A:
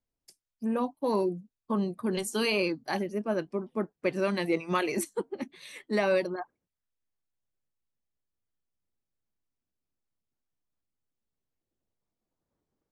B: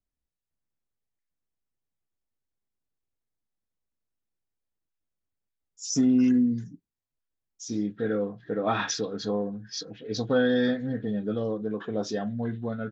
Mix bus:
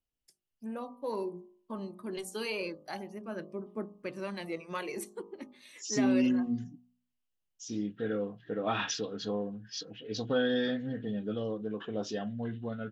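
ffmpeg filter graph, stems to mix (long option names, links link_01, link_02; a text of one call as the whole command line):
ffmpeg -i stem1.wav -i stem2.wav -filter_complex "[0:a]bandreject=frequency=51.41:width_type=h:width=4,bandreject=frequency=102.82:width_type=h:width=4,bandreject=frequency=154.23:width_type=h:width=4,bandreject=frequency=205.64:width_type=h:width=4,bandreject=frequency=257.05:width_type=h:width=4,bandreject=frequency=308.46:width_type=h:width=4,bandreject=frequency=359.87:width_type=h:width=4,bandreject=frequency=411.28:width_type=h:width=4,bandreject=frequency=462.69:width_type=h:width=4,bandreject=frequency=514.1:width_type=h:width=4,bandreject=frequency=565.51:width_type=h:width=4,bandreject=frequency=616.92:width_type=h:width=4,bandreject=frequency=668.33:width_type=h:width=4,bandreject=frequency=719.74:width_type=h:width=4,bandreject=frequency=771.15:width_type=h:width=4,bandreject=frequency=822.56:width_type=h:width=4,bandreject=frequency=873.97:width_type=h:width=4,bandreject=frequency=925.38:width_type=h:width=4,bandreject=frequency=976.79:width_type=h:width=4,bandreject=frequency=1028.2:width_type=h:width=4,bandreject=frequency=1079.61:width_type=h:width=4,bandreject=frequency=1131.02:width_type=h:width=4,bandreject=frequency=1182.43:width_type=h:width=4,bandreject=frequency=1233.84:width_type=h:width=4,aphaser=in_gain=1:out_gain=1:delay=3.4:decay=0.33:speed=0.27:type=triangular,volume=-8.5dB[link_01];[1:a]equalizer=frequency=2900:width=4.3:gain=13,volume=-5.5dB[link_02];[link_01][link_02]amix=inputs=2:normalize=0,bandreject=frequency=61.25:width_type=h:width=4,bandreject=frequency=122.5:width_type=h:width=4,bandreject=frequency=183.75:width_type=h:width=4,bandreject=frequency=245:width_type=h:width=4" out.wav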